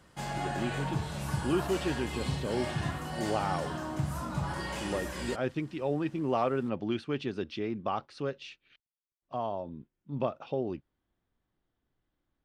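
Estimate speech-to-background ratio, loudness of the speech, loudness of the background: 1.5 dB, -34.5 LUFS, -36.0 LUFS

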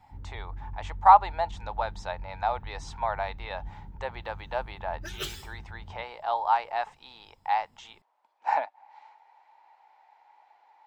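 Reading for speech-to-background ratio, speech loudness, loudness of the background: 14.5 dB, -28.5 LUFS, -43.0 LUFS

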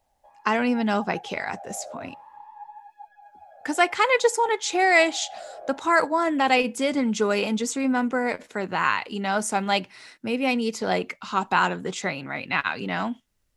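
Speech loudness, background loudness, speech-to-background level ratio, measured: -24.0 LUFS, -44.0 LUFS, 20.0 dB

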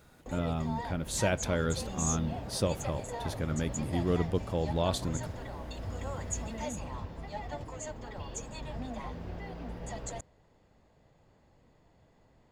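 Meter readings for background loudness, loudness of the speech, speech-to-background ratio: -39.5 LUFS, -33.0 LUFS, 6.5 dB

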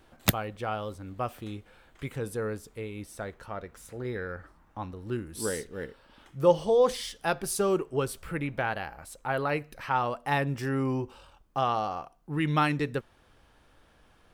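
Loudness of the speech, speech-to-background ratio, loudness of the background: -31.0 LUFS, -0.5 dB, -30.5 LUFS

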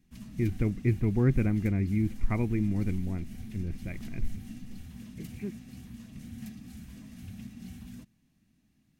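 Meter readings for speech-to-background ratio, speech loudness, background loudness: 14.5 dB, -30.5 LUFS, -45.0 LUFS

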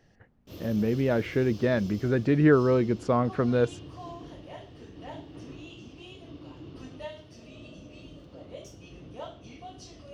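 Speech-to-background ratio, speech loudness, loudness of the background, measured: 19.5 dB, -25.5 LUFS, -45.0 LUFS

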